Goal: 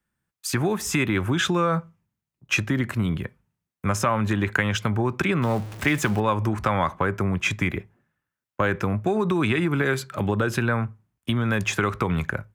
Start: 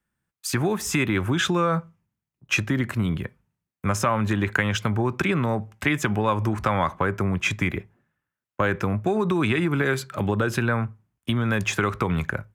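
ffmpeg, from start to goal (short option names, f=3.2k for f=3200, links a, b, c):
-filter_complex "[0:a]asettb=1/sr,asplit=3[a][b][c];[a]atrim=end=5.424[d];[b]atrim=start=5.42:end=6.2,asetpts=PTS-STARTPTS,afade=t=in:d=0.004:c=qsin,afade=t=out:st=0.776:d=0.004:c=qsin,aeval=exprs='val(0)+0.5*0.0224*sgn(val(0))':c=same[e];[c]atrim=start=6.196[f];[d][e]acrossfade=d=0.004:c1=hsin:c2=qsin[g];[g][f]acrossfade=d=0.004:c1=qsin:c2=hsin"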